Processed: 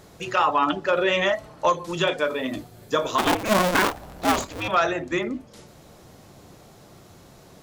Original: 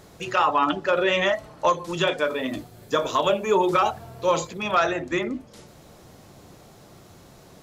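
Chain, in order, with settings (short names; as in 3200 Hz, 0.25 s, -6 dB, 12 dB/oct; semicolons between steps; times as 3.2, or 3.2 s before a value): 3.18–4.68 cycle switcher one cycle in 2, inverted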